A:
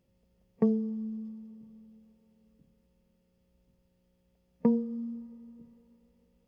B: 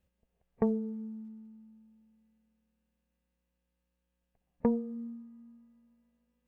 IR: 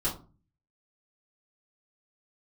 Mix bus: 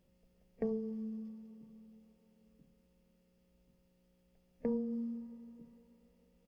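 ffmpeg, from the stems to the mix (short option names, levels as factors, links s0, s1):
-filter_complex "[0:a]equalizer=f=88:w=2.1:g=-11.5,volume=1[s0];[1:a]adelay=1.2,volume=0.531,asplit=2[s1][s2];[s2]volume=0.282[s3];[2:a]atrim=start_sample=2205[s4];[s3][s4]afir=irnorm=-1:irlink=0[s5];[s0][s1][s5]amix=inputs=3:normalize=0,alimiter=level_in=1.06:limit=0.0631:level=0:latency=1:release=307,volume=0.944"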